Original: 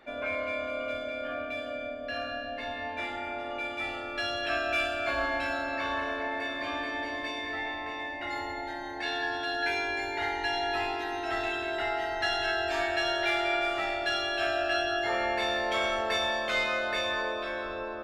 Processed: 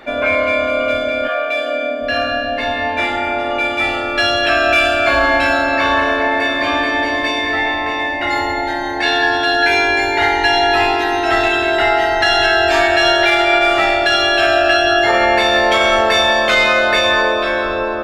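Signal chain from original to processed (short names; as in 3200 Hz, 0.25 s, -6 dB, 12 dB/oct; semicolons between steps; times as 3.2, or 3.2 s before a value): 1.27–2 HPF 520 Hz -> 200 Hz 24 dB/oct; maximiser +19.5 dB; gain -2.5 dB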